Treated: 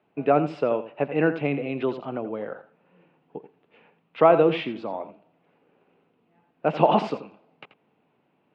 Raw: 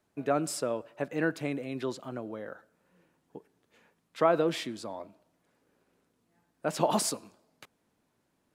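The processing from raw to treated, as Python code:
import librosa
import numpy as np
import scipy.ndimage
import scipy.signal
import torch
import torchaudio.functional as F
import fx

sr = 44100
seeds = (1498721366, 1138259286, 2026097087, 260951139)

y = fx.cabinet(x, sr, low_hz=140.0, low_slope=12, high_hz=2900.0, hz=(150.0, 440.0, 780.0, 1700.0, 2700.0), db=(5, 4, 5, -5, 7))
y = y + 10.0 ** (-12.5 / 20.0) * np.pad(y, (int(84 * sr / 1000.0), 0))[:len(y)]
y = y * librosa.db_to_amplitude(6.0)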